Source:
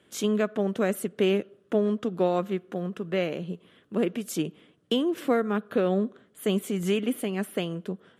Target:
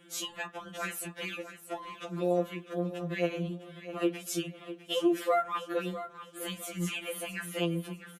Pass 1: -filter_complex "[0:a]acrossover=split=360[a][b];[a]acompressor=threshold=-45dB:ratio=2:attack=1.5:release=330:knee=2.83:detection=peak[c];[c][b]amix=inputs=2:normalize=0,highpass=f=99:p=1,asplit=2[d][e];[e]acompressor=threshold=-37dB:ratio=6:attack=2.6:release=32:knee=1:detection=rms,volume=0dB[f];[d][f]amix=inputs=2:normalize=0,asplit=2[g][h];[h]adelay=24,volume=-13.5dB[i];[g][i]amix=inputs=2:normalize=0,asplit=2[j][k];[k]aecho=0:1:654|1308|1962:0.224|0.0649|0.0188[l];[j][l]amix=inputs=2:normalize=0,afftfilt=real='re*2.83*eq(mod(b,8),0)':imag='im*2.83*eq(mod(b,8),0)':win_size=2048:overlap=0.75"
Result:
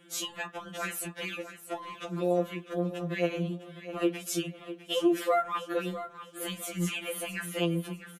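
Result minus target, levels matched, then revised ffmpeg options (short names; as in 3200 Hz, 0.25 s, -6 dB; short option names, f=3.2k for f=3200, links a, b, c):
compressor: peak gain reduction -8.5 dB
-filter_complex "[0:a]acrossover=split=360[a][b];[a]acompressor=threshold=-45dB:ratio=2:attack=1.5:release=330:knee=2.83:detection=peak[c];[c][b]amix=inputs=2:normalize=0,highpass=f=99:p=1,asplit=2[d][e];[e]acompressor=threshold=-47dB:ratio=6:attack=2.6:release=32:knee=1:detection=rms,volume=0dB[f];[d][f]amix=inputs=2:normalize=0,asplit=2[g][h];[h]adelay=24,volume=-13.5dB[i];[g][i]amix=inputs=2:normalize=0,asplit=2[j][k];[k]aecho=0:1:654|1308|1962:0.224|0.0649|0.0188[l];[j][l]amix=inputs=2:normalize=0,afftfilt=real='re*2.83*eq(mod(b,8),0)':imag='im*2.83*eq(mod(b,8),0)':win_size=2048:overlap=0.75"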